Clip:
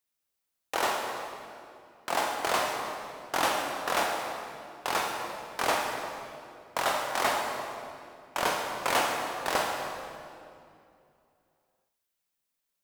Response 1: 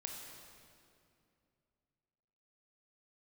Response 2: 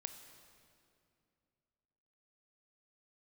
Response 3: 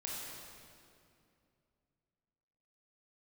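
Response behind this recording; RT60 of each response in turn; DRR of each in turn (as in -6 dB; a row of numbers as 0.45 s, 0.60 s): 1; 2.5 s, 2.5 s, 2.5 s; 0.5 dB, 7.5 dB, -5.0 dB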